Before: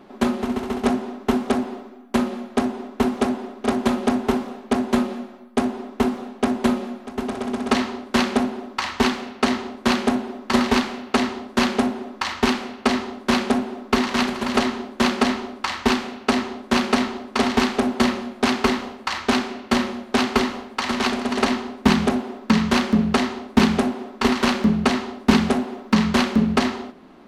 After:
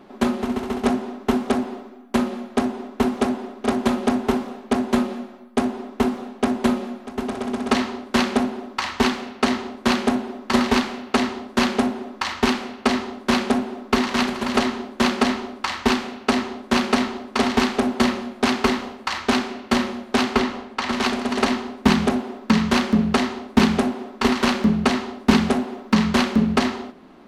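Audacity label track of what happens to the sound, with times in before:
20.350000	20.930000	treble shelf 7.2 kHz -9 dB

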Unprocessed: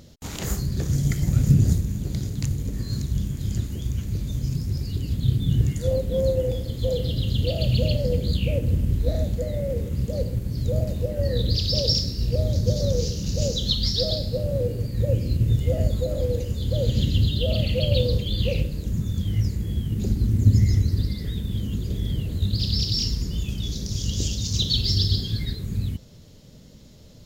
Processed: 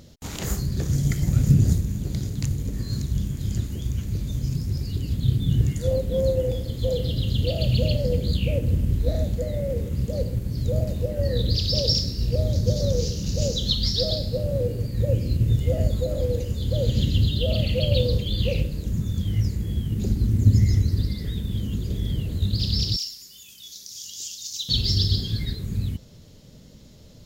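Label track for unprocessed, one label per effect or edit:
22.960000	24.690000	differentiator

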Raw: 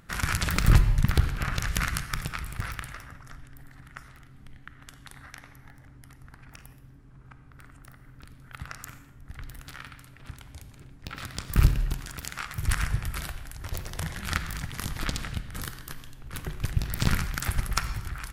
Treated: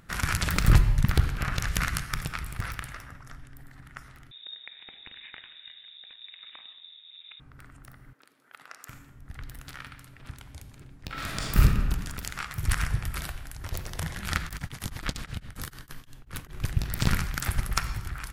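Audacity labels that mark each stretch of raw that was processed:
4.310000	7.400000	frequency inversion carrier 3.7 kHz
8.130000	8.890000	ladder high-pass 290 Hz, resonance 20%
11.070000	11.580000	reverb throw, RT60 1.7 s, DRR -4.5 dB
14.470000	16.530000	tremolo of two beating tones nulls at 11 Hz -> 4.2 Hz

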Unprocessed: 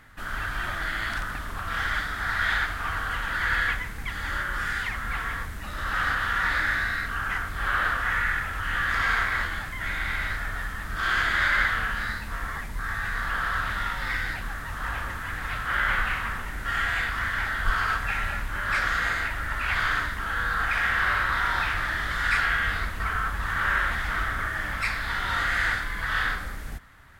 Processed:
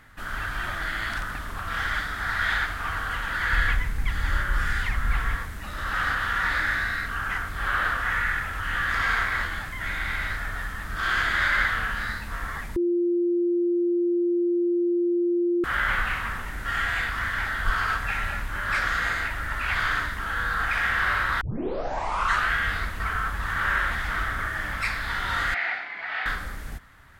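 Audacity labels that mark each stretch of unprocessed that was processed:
3.530000	5.360000	bass shelf 110 Hz +12 dB
12.760000	15.640000	bleep 348 Hz -20 dBFS
21.410000	21.410000	tape start 1.12 s
25.540000	26.260000	cabinet simulation 470–3900 Hz, peaks and dips at 510 Hz -8 dB, 730 Hz +10 dB, 1.1 kHz -10 dB, 1.6 kHz -7 dB, 2.3 kHz +7 dB, 3.4 kHz -8 dB

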